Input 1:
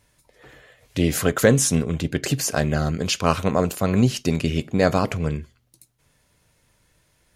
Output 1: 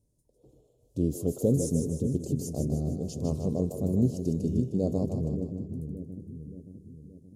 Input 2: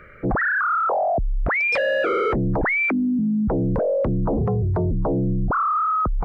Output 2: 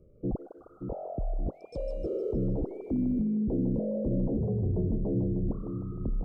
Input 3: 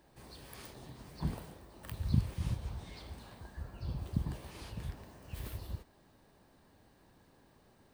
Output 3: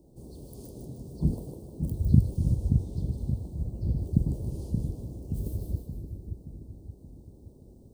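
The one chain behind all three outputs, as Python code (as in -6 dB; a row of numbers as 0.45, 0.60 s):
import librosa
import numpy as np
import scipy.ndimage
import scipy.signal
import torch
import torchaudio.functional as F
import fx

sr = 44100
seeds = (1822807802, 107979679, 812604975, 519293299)

p1 = scipy.signal.sosfilt(scipy.signal.cheby1(2, 1.0, [390.0, 7300.0], 'bandstop', fs=sr, output='sos'), x)
p2 = fx.high_shelf(p1, sr, hz=2600.0, db=-10.0)
p3 = p2 + fx.echo_split(p2, sr, split_hz=400.0, low_ms=575, high_ms=154, feedback_pct=52, wet_db=-6.0, dry=0)
y = p3 * 10.0 ** (-30 / 20.0) / np.sqrt(np.mean(np.square(p3)))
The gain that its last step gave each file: -6.0, -7.5, +10.5 dB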